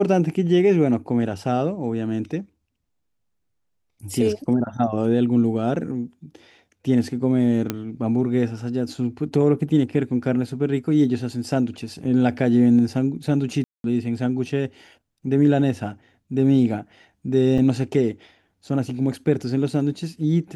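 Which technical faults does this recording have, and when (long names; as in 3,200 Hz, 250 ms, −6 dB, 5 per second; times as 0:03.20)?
0:07.70: click −9 dBFS
0:13.64–0:13.84: drop-out 202 ms
0:17.58: drop-out 2.1 ms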